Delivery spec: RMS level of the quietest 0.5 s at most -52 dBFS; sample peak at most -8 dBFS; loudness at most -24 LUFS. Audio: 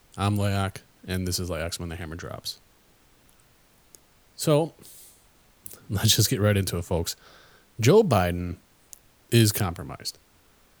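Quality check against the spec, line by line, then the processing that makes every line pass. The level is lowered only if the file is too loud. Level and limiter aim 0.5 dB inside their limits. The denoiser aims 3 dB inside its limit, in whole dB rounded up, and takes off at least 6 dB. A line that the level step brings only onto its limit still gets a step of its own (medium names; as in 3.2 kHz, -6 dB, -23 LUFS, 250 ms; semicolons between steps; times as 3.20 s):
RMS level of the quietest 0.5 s -59 dBFS: pass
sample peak -5.5 dBFS: fail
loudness -25.0 LUFS: pass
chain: peak limiter -8.5 dBFS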